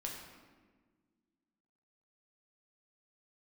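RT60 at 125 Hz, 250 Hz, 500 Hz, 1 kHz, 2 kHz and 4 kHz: 2.0 s, 2.4 s, 1.7 s, 1.3 s, 1.2 s, 0.95 s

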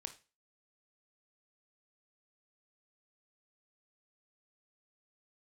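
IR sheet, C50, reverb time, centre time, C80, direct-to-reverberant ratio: 12.5 dB, 0.30 s, 8 ms, 19.5 dB, 7.0 dB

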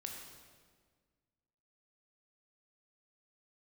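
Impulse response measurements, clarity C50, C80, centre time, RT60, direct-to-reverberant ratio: 3.0 dB, 4.5 dB, 58 ms, 1.7 s, 1.0 dB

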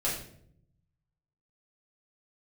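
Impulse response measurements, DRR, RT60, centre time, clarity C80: -7.5 dB, 0.65 s, 39 ms, 8.0 dB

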